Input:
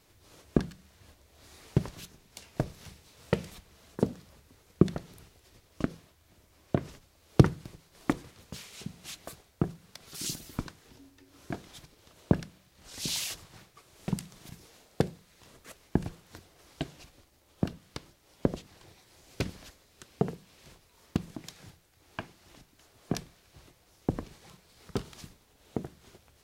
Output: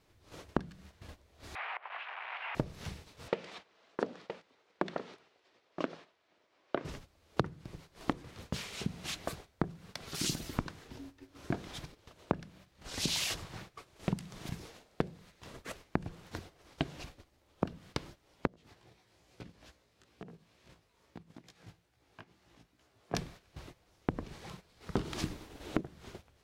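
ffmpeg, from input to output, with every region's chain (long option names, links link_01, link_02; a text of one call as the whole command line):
ffmpeg -i in.wav -filter_complex "[0:a]asettb=1/sr,asplit=3[link_01][link_02][link_03];[link_01]atrim=end=1.554[link_04];[link_02]atrim=start=1.55:end=2.55,asetpts=PTS-STARTPTS,afade=type=in:duration=0.004:curve=qsin,afade=type=out:start_time=0.996:duration=0.004:curve=qsin,aeval=exprs='val(0)+0.5*0.0178*sgn(val(0))':channel_layout=same,acompressor=threshold=-39dB:ratio=5:attack=3.2:release=140:knee=1:detection=peak,asuperpass=centerf=1400:order=8:qfactor=0.7[link_05];[link_03]atrim=start=2.546[link_06];[link_04][link_05]acrossfade=duration=0.004:curve1=hsin:curve2=qsin[link_07];[link_07][link_06]acrossfade=duration=0.004:curve1=qsin:curve2=hsin,asettb=1/sr,asplit=3[link_08][link_09][link_10];[link_08]atrim=end=3.284[link_11];[link_09]atrim=start=3.28:end=6.85,asetpts=PTS-STARTPTS,afade=type=in:duration=0.004:curve=qsin,afade=type=out:start_time=3.566:duration=0.004:curve=qsin,asoftclip=type=hard:threshold=-16.5dB,highpass=420,lowpass=4700,aecho=1:1:969:0.15,atrim=end_sample=157437[link_12];[link_10]atrim=start=6.846[link_13];[link_11][link_12]acrossfade=duration=0.004:curve1=hsin:curve2=qsin[link_14];[link_14][link_13]acrossfade=duration=0.004:curve1=qsin:curve2=hsin,asettb=1/sr,asplit=3[link_15][link_16][link_17];[link_15]atrim=end=18.474[link_18];[link_16]atrim=start=18.47:end=23.14,asetpts=PTS-STARTPTS,afade=type=in:duration=0.004:curve=qsin,afade=type=out:start_time=4.666:duration=0.004:curve=qsin,highpass=50,acompressor=threshold=-50dB:ratio=5:attack=3.2:release=140:knee=1:detection=peak,flanger=delay=16:depth=2.5:speed=2.3[link_19];[link_17]atrim=start=23.136[link_20];[link_18][link_19]acrossfade=duration=0.004:curve1=hsin:curve2=qsin[link_21];[link_21][link_20]acrossfade=duration=0.004:curve1=qsin:curve2=hsin,asettb=1/sr,asplit=3[link_22][link_23][link_24];[link_22]atrim=end=24.974[link_25];[link_23]atrim=start=24.97:end=25.81,asetpts=PTS-STARTPTS,afade=type=in:duration=0.004:curve=qsin,afade=type=out:start_time=0.836:duration=0.004:curve=qsin,equalizer=frequency=320:width=3.9:gain=9,acontrast=63,volume=14.5dB,asoftclip=hard,volume=-14.5dB[link_26];[link_24]atrim=start=25.806[link_27];[link_25][link_26]acrossfade=duration=0.004:curve1=hsin:curve2=qsin[link_28];[link_28][link_27]acrossfade=duration=0.004:curve1=qsin:curve2=hsin,agate=range=-11dB:threshold=-56dB:ratio=16:detection=peak,highshelf=frequency=6000:gain=-11.5,acompressor=threshold=-36dB:ratio=12,volume=7.5dB" out.wav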